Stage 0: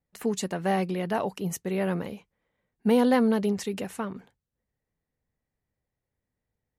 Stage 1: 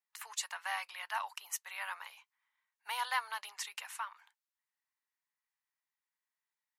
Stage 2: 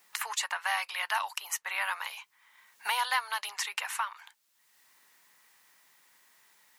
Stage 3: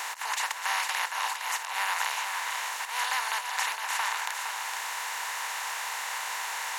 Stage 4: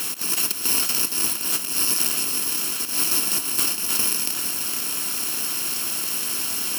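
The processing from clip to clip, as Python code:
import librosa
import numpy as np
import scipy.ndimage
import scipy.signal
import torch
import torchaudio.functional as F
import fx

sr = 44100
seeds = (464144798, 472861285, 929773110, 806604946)

y1 = scipy.signal.sosfilt(scipy.signal.ellip(4, 1.0, 70, 940.0, 'highpass', fs=sr, output='sos'), x)
y1 = y1 * 10.0 ** (-1.5 / 20.0)
y2 = fx.band_squash(y1, sr, depth_pct=70)
y2 = y2 * 10.0 ** (8.0 / 20.0)
y3 = fx.bin_compress(y2, sr, power=0.2)
y3 = fx.auto_swell(y3, sr, attack_ms=144.0)
y3 = y3 + 10.0 ** (-6.5 / 20.0) * np.pad(y3, (int(462 * sr / 1000.0), 0))[:len(y3)]
y3 = y3 * 10.0 ** (-6.5 / 20.0)
y4 = fx.bit_reversed(y3, sr, seeds[0], block=64)
y4 = y4 * 10.0 ** (8.5 / 20.0)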